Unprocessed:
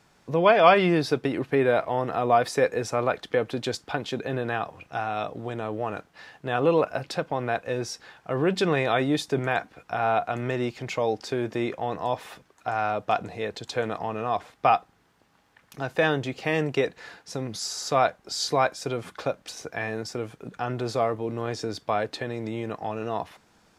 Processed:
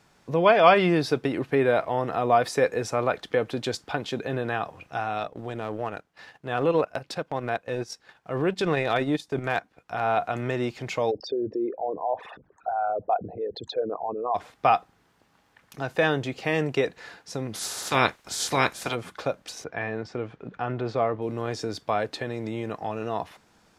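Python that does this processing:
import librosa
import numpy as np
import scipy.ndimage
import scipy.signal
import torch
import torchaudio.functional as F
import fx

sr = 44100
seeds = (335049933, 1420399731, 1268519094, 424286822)

y = fx.transient(x, sr, attack_db=-4, sustain_db=-12, at=(5.18, 10.17))
y = fx.envelope_sharpen(y, sr, power=3.0, at=(11.1, 14.34), fade=0.02)
y = fx.spec_clip(y, sr, under_db=21, at=(17.53, 18.94), fade=0.02)
y = fx.lowpass(y, sr, hz=3000.0, slope=12, at=(19.64, 21.22))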